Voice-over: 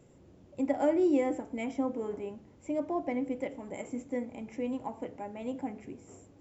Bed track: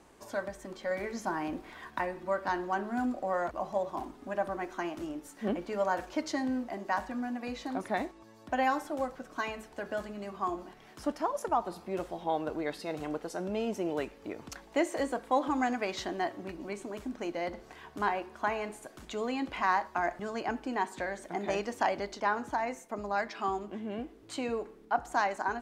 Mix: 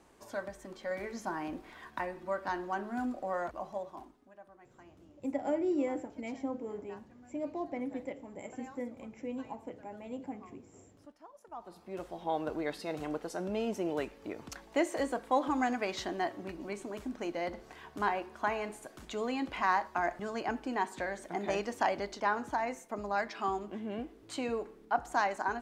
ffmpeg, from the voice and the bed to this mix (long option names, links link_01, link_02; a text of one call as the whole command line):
ffmpeg -i stem1.wav -i stem2.wav -filter_complex "[0:a]adelay=4650,volume=-5dB[link_01];[1:a]volume=18dB,afade=type=out:start_time=3.42:duration=0.9:silence=0.112202,afade=type=in:start_time=11.47:duration=0.98:silence=0.0841395[link_02];[link_01][link_02]amix=inputs=2:normalize=0" out.wav